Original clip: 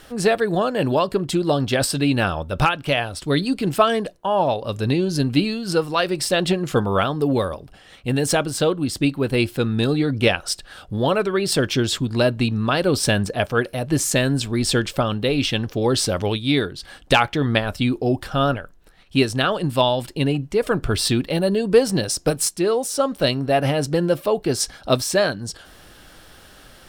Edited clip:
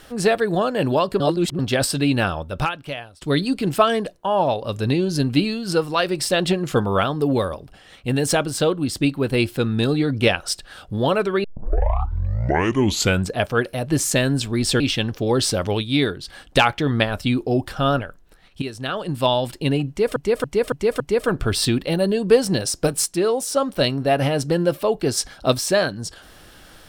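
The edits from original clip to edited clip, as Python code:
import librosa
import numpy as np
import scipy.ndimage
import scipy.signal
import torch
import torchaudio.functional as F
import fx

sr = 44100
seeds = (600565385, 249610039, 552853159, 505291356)

y = fx.edit(x, sr, fx.reverse_span(start_s=1.2, length_s=0.39),
    fx.fade_out_to(start_s=2.2, length_s=1.01, floor_db=-22.5),
    fx.tape_start(start_s=11.44, length_s=1.9),
    fx.cut(start_s=14.8, length_s=0.55),
    fx.fade_in_from(start_s=19.17, length_s=0.76, floor_db=-14.5),
    fx.repeat(start_s=20.43, length_s=0.28, count=5), tone=tone)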